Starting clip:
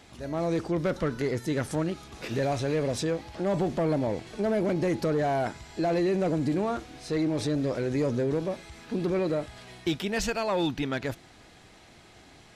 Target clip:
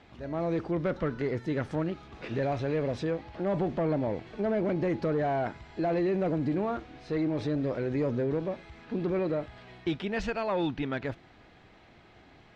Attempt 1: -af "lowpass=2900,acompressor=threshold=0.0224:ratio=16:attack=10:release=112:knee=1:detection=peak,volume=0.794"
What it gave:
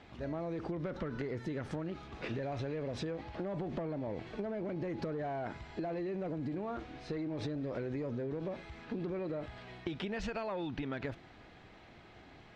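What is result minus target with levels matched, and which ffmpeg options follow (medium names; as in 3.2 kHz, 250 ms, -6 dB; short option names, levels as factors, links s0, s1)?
compression: peak gain reduction +11.5 dB
-af "lowpass=2900,volume=0.794"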